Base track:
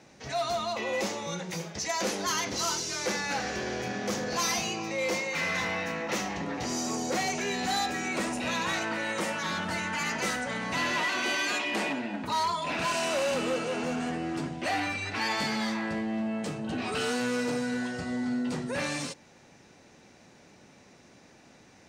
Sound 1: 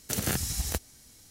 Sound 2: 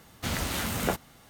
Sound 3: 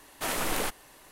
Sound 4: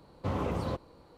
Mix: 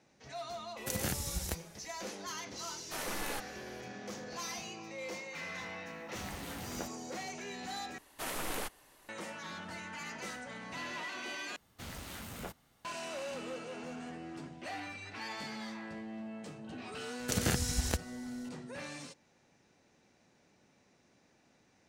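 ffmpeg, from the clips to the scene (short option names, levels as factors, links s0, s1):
-filter_complex "[1:a]asplit=2[s0][s1];[3:a]asplit=2[s2][s3];[2:a]asplit=2[s4][s5];[0:a]volume=0.237[s6];[s5]aeval=exprs='clip(val(0),-1,0.0422)':c=same[s7];[s1]equalizer=f=13000:t=o:w=0.64:g=-11[s8];[s6]asplit=3[s9][s10][s11];[s9]atrim=end=7.984[s12];[s3]atrim=end=1.11,asetpts=PTS-STARTPTS,volume=0.398[s13];[s10]atrim=start=9.086:end=11.564[s14];[s7]atrim=end=1.29,asetpts=PTS-STARTPTS,volume=0.2[s15];[s11]atrim=start=12.846[s16];[s0]atrim=end=1.3,asetpts=PTS-STARTPTS,volume=0.473,afade=t=in:d=0.004:c=hsin,afade=t=out:st=1.296:d=0.004:c=hsin,adelay=770[s17];[s2]atrim=end=1.11,asetpts=PTS-STARTPTS,volume=0.335,afade=t=in:d=0.004:c=hsin,afade=t=out:st=1.106:d=0.004:c=hsin,adelay=2700[s18];[s4]atrim=end=1.29,asetpts=PTS-STARTPTS,volume=0.188,afade=t=in:d=0.004:c=hsin,afade=t=out:st=1.286:d=0.004:c=hsin,adelay=5920[s19];[s8]atrim=end=1.3,asetpts=PTS-STARTPTS,volume=0.891,afade=t=in:d=0.004:c=hsin,afade=t=out:st=1.296:d=0.004:c=hsin,adelay=17190[s20];[s12][s13]acrossfade=d=0.004:c1=hsin:c2=hsin[s21];[s21][s14]acrossfade=d=0.004:c1=hsin:c2=hsin[s22];[s22][s15]acrossfade=d=0.004:c1=hsin:c2=hsin[s23];[s23][s16]acrossfade=d=0.004:c1=hsin:c2=hsin[s24];[s24][s17][s18][s19][s20]amix=inputs=5:normalize=0"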